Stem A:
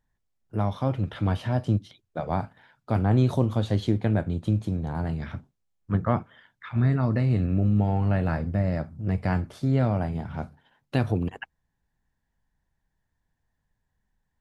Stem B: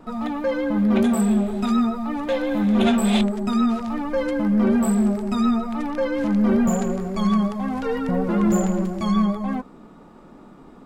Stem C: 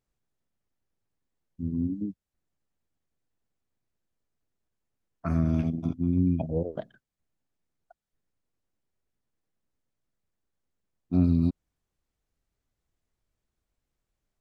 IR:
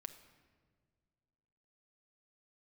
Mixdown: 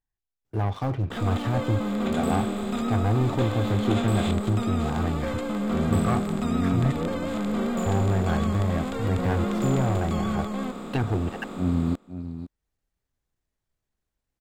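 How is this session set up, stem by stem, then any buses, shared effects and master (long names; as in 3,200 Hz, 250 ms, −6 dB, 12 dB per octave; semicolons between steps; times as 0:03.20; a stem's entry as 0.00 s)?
−8.5 dB, 0.00 s, muted 0:06.92–0:07.86, no send, no echo send, treble cut that deepens with the level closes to 2,100 Hz, closed at −20 dBFS; comb filter 2.6 ms, depth 42%; leveller curve on the samples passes 3
−11.5 dB, 1.10 s, no send, echo send −22 dB, compressor on every frequency bin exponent 0.4; noise gate with hold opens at −21 dBFS
−0.5 dB, 0.45 s, no send, echo send −10.5 dB, transient designer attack −7 dB, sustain −3 dB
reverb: not used
echo: single-tap delay 511 ms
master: no processing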